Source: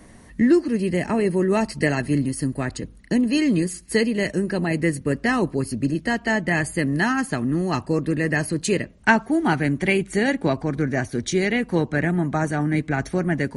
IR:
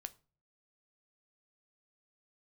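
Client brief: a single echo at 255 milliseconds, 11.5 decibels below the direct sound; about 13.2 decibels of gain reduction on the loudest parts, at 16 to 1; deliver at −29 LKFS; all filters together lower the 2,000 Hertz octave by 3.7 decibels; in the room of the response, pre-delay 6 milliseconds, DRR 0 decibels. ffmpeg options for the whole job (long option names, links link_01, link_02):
-filter_complex "[0:a]equalizer=frequency=2000:width_type=o:gain=-4.5,acompressor=threshold=-25dB:ratio=16,aecho=1:1:255:0.266,asplit=2[link_01][link_02];[1:a]atrim=start_sample=2205,adelay=6[link_03];[link_02][link_03]afir=irnorm=-1:irlink=0,volume=4dB[link_04];[link_01][link_04]amix=inputs=2:normalize=0,volume=-2dB"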